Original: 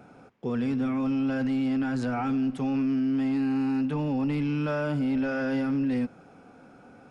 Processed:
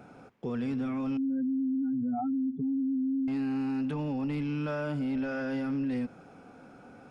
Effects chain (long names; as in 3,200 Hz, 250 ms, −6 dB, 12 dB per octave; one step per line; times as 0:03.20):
0:01.17–0:03.28: expanding power law on the bin magnitudes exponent 3.2
brickwall limiter −26 dBFS, peak gain reduction 5.5 dB